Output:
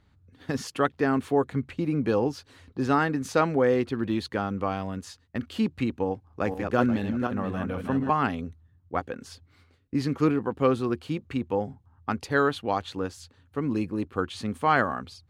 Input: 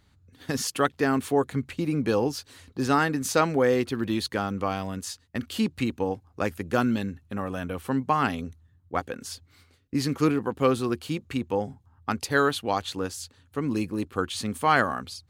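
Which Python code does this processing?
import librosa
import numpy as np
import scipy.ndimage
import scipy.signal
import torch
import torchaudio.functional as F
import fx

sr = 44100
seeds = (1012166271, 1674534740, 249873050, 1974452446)

y = fx.reverse_delay_fb(x, sr, ms=242, feedback_pct=48, wet_db=-4.5, at=(6.06, 8.11))
y = fx.lowpass(y, sr, hz=2200.0, slope=6)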